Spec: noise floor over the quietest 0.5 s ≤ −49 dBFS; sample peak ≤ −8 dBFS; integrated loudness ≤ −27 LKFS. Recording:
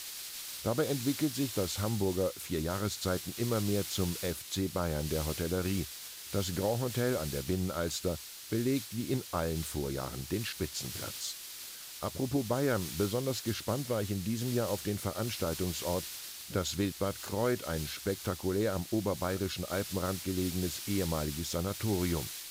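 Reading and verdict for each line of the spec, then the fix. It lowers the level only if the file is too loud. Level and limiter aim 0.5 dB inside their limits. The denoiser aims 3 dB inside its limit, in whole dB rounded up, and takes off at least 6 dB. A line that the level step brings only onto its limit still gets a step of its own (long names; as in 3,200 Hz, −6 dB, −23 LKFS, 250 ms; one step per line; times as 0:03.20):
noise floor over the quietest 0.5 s −46 dBFS: out of spec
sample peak −18.0 dBFS: in spec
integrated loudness −33.5 LKFS: in spec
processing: broadband denoise 6 dB, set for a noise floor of −46 dBFS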